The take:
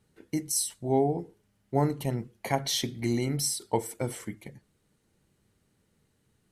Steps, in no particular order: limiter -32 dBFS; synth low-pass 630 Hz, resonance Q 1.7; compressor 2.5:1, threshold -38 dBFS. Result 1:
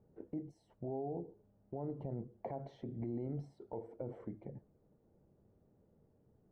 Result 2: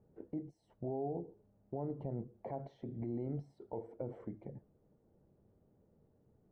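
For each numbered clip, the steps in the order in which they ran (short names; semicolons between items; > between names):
compressor > synth low-pass > limiter; compressor > limiter > synth low-pass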